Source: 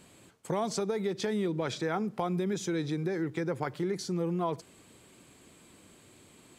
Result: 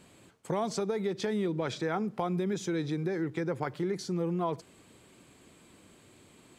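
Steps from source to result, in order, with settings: treble shelf 5.5 kHz -4.5 dB

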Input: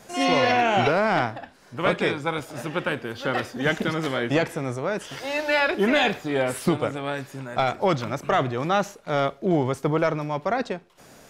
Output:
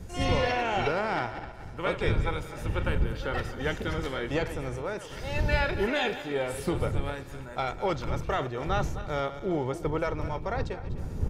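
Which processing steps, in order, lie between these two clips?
backward echo that repeats 127 ms, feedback 61%, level -12 dB; wind noise 120 Hz -27 dBFS; comb 2.2 ms, depth 31%; trim -7.5 dB

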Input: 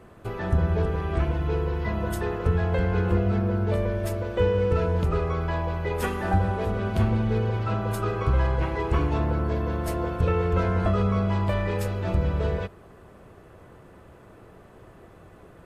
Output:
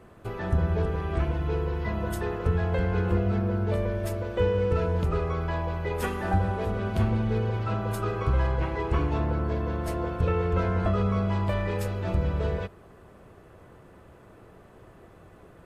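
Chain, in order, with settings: 8.53–11.06 s: treble shelf 8.8 kHz -5.5 dB; trim -2 dB

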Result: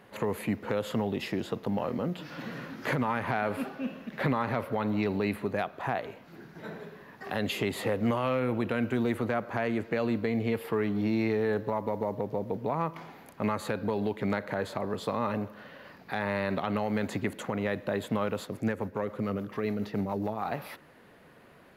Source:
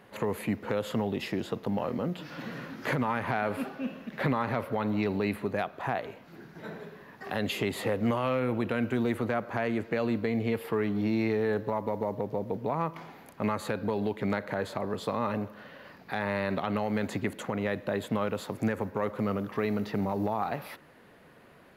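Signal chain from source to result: 18.45–20.45 s: rotary cabinet horn 7 Hz

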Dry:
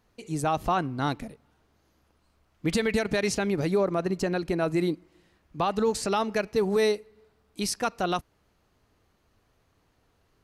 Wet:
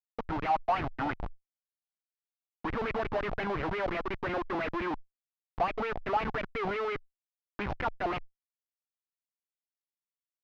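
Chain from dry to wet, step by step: three-band isolator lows -23 dB, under 260 Hz, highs -16 dB, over 2.5 kHz; in parallel at +1 dB: upward compressor, threshold -28 dBFS; on the sum: Schmitt trigger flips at -28 dBFS; valve stage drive 42 dB, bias 0.65; distance through air 280 m; sweeping bell 5.7 Hz 700–2400 Hz +14 dB; trim +8.5 dB

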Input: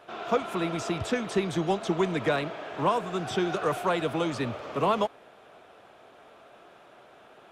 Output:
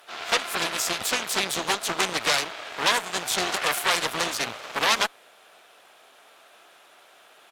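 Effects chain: harmony voices -5 st -16 dB, +3 st -12 dB; Chebyshev shaper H 6 -8 dB, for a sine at -13 dBFS; tilt EQ +4.5 dB/octave; trim -1.5 dB

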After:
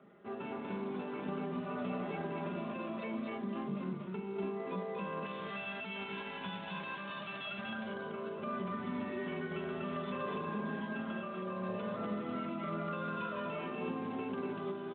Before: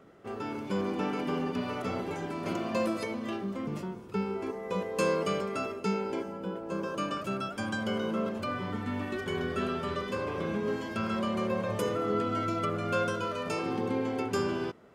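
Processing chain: 5.24–7.68 s: formants flattened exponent 0.3; high-pass 83 Hz 24 dB/octave; band-stop 420 Hz, Q 12; dynamic bell 2.1 kHz, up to -3 dB, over -53 dBFS, Q 3.8; comb 4.9 ms, depth 68%; compression 16:1, threshold -30 dBFS, peak gain reduction 8.5 dB; peak limiter -26.5 dBFS, peak gain reduction 5.5 dB; loudspeakers at several distances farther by 15 m -9 dB, 83 m -2 dB; trim -5.5 dB; Speex 24 kbps 8 kHz

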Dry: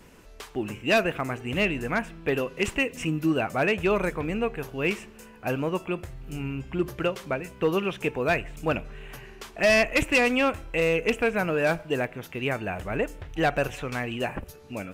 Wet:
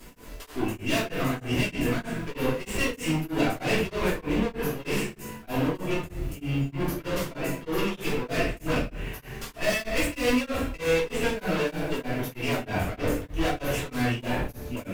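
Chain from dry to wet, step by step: treble shelf 9.7 kHz +12 dB; valve stage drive 32 dB, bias 0.55; crackle 450 per s -48 dBFS; simulated room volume 190 m³, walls mixed, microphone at 2.9 m; tremolo of two beating tones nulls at 3.2 Hz

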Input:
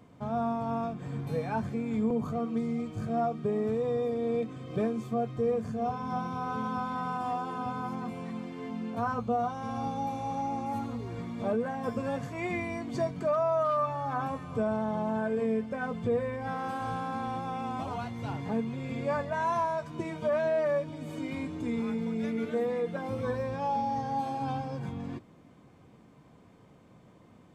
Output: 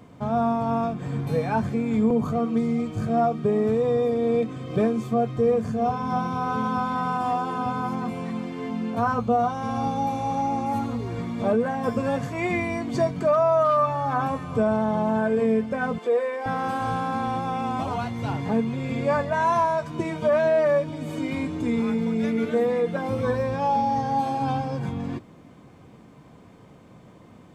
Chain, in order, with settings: 15.98–16.46 s: high-pass 370 Hz 24 dB/octave; trim +7.5 dB

